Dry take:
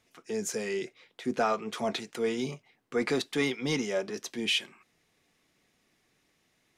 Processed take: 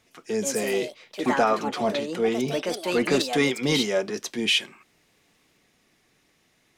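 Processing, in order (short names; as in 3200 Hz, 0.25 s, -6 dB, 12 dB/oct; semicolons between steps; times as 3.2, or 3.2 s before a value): 1.44–3.12 high shelf 4100 Hz -9.5 dB; echoes that change speed 0.192 s, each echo +4 st, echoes 2, each echo -6 dB; gain +6 dB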